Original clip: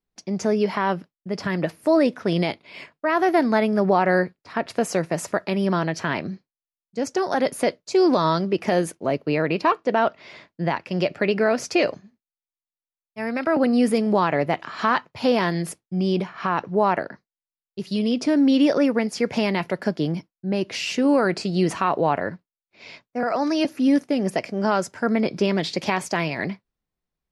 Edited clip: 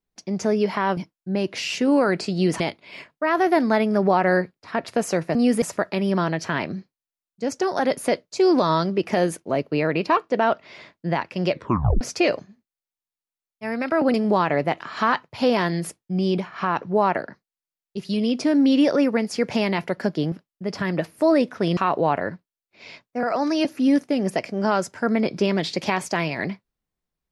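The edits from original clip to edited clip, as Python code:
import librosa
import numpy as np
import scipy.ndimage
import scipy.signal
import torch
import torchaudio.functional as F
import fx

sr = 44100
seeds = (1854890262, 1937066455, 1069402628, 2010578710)

y = fx.edit(x, sr, fx.swap(start_s=0.97, length_s=1.45, other_s=20.14, other_length_s=1.63),
    fx.tape_stop(start_s=11.06, length_s=0.5),
    fx.move(start_s=13.69, length_s=0.27, to_s=5.17), tone=tone)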